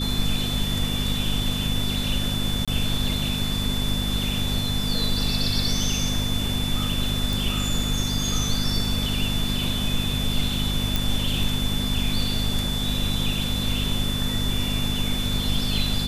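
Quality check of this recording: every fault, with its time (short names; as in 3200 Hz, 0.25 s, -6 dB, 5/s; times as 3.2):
hum 50 Hz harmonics 5 -28 dBFS
tone 3500 Hz -29 dBFS
2.65–2.68 gap 26 ms
7.33 pop
10.96 pop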